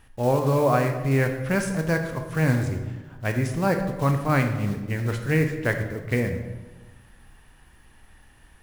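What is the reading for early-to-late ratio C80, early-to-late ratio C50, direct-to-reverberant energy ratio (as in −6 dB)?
9.5 dB, 7.5 dB, 5.0 dB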